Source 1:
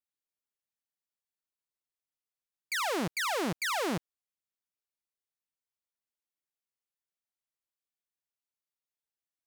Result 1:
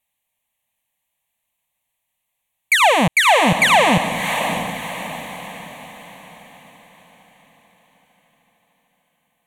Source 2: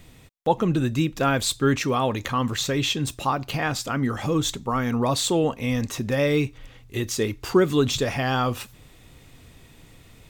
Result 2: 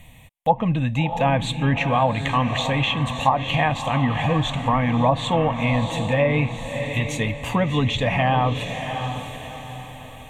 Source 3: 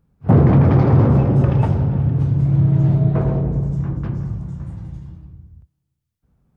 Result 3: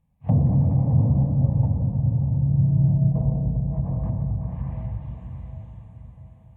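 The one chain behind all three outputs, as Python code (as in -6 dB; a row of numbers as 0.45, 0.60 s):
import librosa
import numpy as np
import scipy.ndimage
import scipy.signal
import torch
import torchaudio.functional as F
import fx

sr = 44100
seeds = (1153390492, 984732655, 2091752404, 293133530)

y = fx.low_shelf(x, sr, hz=200.0, db=-2.5)
y = fx.fixed_phaser(y, sr, hz=1400.0, stages=6)
y = fx.rider(y, sr, range_db=4, speed_s=2.0)
y = fx.echo_diffused(y, sr, ms=655, feedback_pct=43, wet_db=-8.0)
y = fx.env_lowpass_down(y, sr, base_hz=430.0, full_db=-17.5)
y = y * 10.0 ** (-22 / 20.0) / np.sqrt(np.mean(np.square(y)))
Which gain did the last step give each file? +22.5, +8.0, -2.0 dB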